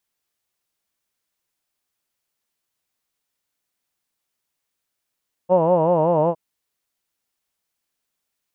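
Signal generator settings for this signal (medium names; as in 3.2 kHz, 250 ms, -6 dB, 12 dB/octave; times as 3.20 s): formant vowel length 0.86 s, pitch 174 Hz, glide -1.5 st, vibrato depth 1.25 st, F1 570 Hz, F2 950 Hz, F3 2.8 kHz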